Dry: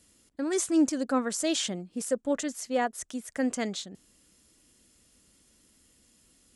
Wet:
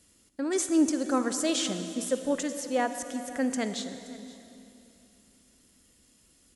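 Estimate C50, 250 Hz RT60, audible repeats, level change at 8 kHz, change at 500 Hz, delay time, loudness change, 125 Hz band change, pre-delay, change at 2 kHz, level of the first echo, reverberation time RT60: 9.0 dB, 3.5 s, 1, +0.5 dB, +0.5 dB, 524 ms, +0.5 dB, +1.0 dB, 37 ms, +0.5 dB, −19.5 dB, 2.9 s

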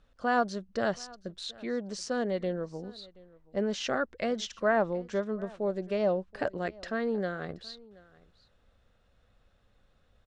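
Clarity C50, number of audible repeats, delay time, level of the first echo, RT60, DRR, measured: no reverb audible, 1, 727 ms, −23.0 dB, no reverb audible, no reverb audible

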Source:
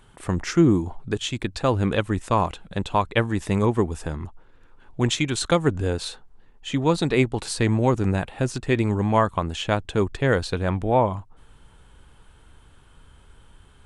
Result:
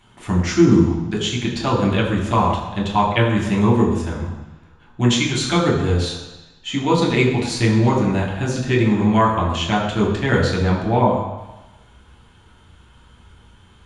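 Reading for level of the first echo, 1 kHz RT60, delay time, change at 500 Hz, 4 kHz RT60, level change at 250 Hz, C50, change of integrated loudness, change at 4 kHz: no echo audible, 1.1 s, no echo audible, +3.0 dB, 1.1 s, +6.0 dB, 4.5 dB, +5.0 dB, +6.0 dB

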